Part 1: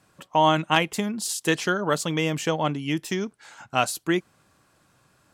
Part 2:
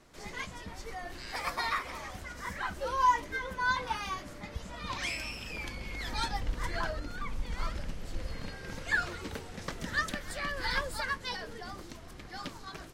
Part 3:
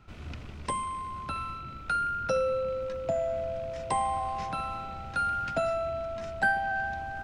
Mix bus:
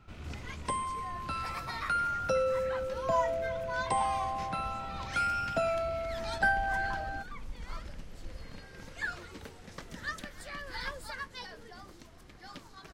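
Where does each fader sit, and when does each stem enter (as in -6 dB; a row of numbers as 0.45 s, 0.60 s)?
mute, -6.5 dB, -1.5 dB; mute, 0.10 s, 0.00 s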